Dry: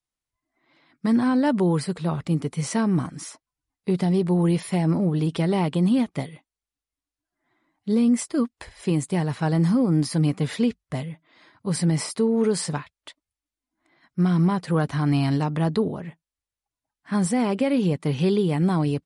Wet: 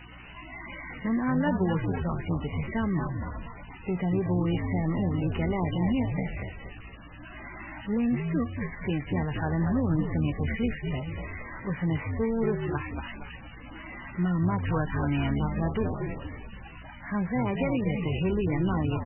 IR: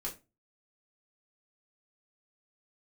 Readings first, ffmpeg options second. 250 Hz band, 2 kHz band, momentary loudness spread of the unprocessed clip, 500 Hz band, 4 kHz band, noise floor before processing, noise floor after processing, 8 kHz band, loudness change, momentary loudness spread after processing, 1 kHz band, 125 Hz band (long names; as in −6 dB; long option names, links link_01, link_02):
−6.0 dB, +0.5 dB, 12 LU, −6.0 dB, −8.0 dB, below −85 dBFS, −45 dBFS, below −40 dB, −6.0 dB, 16 LU, −3.5 dB, −4.5 dB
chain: -filter_complex "[0:a]aeval=exprs='val(0)+0.5*0.0251*sgn(val(0))':channel_layout=same,highpass=44,bandreject=frequency=4100:width=7.7,crystalizer=i=5:c=0,asoftclip=type=tanh:threshold=-6dB,aeval=exprs='val(0)+0.00891*(sin(2*PI*60*n/s)+sin(2*PI*2*60*n/s)/2+sin(2*PI*3*60*n/s)/3+sin(2*PI*4*60*n/s)/4+sin(2*PI*5*60*n/s)/5)':channel_layout=same,asplit=6[link_01][link_02][link_03][link_04][link_05][link_06];[link_02]adelay=234,afreqshift=-72,volume=-5dB[link_07];[link_03]adelay=468,afreqshift=-144,volume=-12.3dB[link_08];[link_04]adelay=702,afreqshift=-216,volume=-19.7dB[link_09];[link_05]adelay=936,afreqshift=-288,volume=-27dB[link_10];[link_06]adelay=1170,afreqshift=-360,volume=-34.3dB[link_11];[link_01][link_07][link_08][link_09][link_10][link_11]amix=inputs=6:normalize=0,asplit=2[link_12][link_13];[1:a]atrim=start_sample=2205,atrim=end_sample=3528[link_14];[link_13][link_14]afir=irnorm=-1:irlink=0,volume=-22.5dB[link_15];[link_12][link_15]amix=inputs=2:normalize=0,volume=-7.5dB" -ar 16000 -c:a libmp3lame -b:a 8k